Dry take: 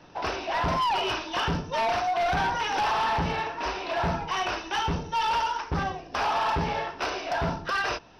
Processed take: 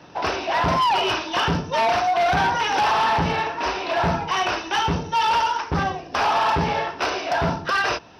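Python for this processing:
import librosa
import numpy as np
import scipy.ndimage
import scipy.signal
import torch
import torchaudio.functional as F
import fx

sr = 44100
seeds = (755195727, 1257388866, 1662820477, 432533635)

y = scipy.signal.sosfilt(scipy.signal.butter(2, 70.0, 'highpass', fs=sr, output='sos'), x)
y = y * 10.0 ** (6.0 / 20.0)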